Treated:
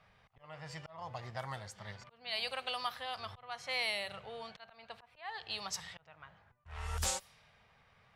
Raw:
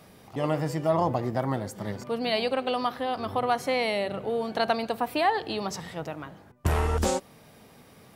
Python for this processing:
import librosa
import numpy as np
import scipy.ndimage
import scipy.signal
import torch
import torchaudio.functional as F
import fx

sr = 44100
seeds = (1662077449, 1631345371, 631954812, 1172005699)

y = fx.auto_swell(x, sr, attack_ms=390.0)
y = fx.tone_stack(y, sr, knobs='10-0-10')
y = fx.env_lowpass(y, sr, base_hz=1800.0, full_db=-34.0)